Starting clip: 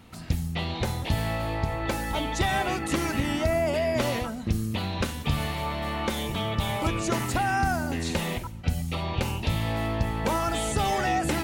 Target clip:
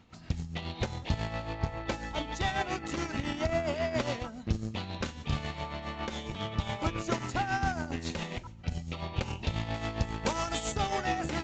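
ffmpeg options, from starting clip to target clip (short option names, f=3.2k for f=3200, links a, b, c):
-filter_complex "[0:a]tremolo=f=7.3:d=0.49,asplit=2[a][b];[b]acrusher=bits=3:mix=0:aa=0.5,volume=-6dB[c];[a][c]amix=inputs=2:normalize=0,asettb=1/sr,asplit=3[d][e][f];[d]atrim=end=9.744[g];[e]atrim=start=9.74:end=10.72,asetpts=PTS-STARTPTS,afade=t=in:d=0.004:c=qsin,afade=t=out:st=0.976:d=0.004:c=qsin,aemphasis=mode=production:type=50fm[h];[f]atrim=start=10.716[i];[g][h]acrossfade=d=0.004:c1=hsin:c2=qsin[j];[j][i]acrossfade=d=0.004:c1=qsin:c2=hsin,aresample=16000,aresample=44100,volume=-6.5dB"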